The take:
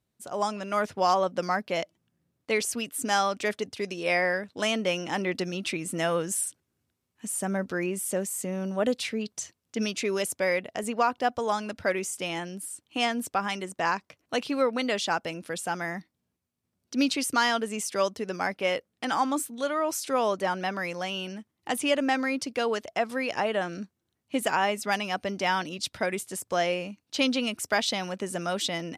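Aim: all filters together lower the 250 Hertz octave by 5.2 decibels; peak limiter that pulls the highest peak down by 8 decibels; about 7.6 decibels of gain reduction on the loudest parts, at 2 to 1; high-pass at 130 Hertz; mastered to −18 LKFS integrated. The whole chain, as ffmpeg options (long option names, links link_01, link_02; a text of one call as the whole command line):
ffmpeg -i in.wav -af "highpass=130,equalizer=frequency=250:width_type=o:gain=-6,acompressor=threshold=-34dB:ratio=2,volume=18.5dB,alimiter=limit=-6.5dB:level=0:latency=1" out.wav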